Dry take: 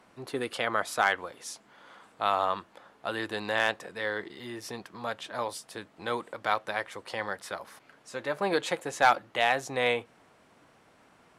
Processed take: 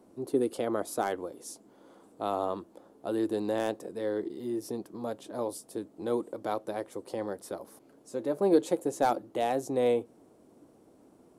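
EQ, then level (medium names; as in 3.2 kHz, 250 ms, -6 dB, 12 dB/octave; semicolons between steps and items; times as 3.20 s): FFT filter 160 Hz 0 dB, 320 Hz +10 dB, 1.8 kHz -17 dB, 2.7 kHz -15 dB, 11 kHz +2 dB; 0.0 dB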